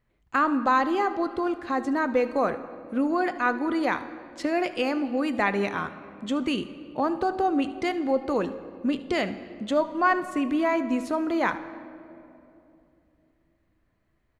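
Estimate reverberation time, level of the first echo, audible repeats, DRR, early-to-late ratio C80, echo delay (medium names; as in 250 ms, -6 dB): 2.9 s, -18.5 dB, 1, 10.5 dB, 14.0 dB, 75 ms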